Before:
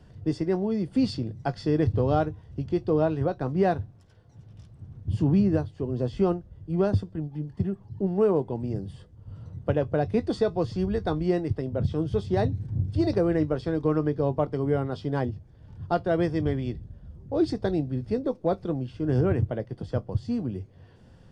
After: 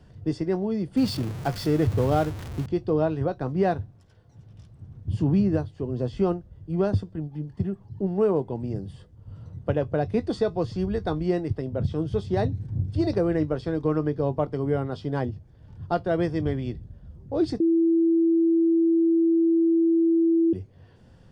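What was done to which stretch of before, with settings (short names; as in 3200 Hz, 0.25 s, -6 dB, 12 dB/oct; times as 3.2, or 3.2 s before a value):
0.97–2.66 zero-crossing step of -32 dBFS
17.6–20.53 bleep 331 Hz -17 dBFS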